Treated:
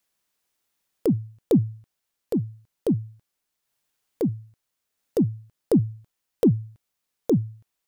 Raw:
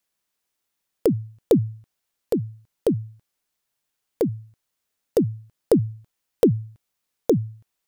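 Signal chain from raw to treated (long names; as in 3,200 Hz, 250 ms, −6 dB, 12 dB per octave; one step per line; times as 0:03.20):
transient designer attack −8 dB, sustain −4 dB
level +2.5 dB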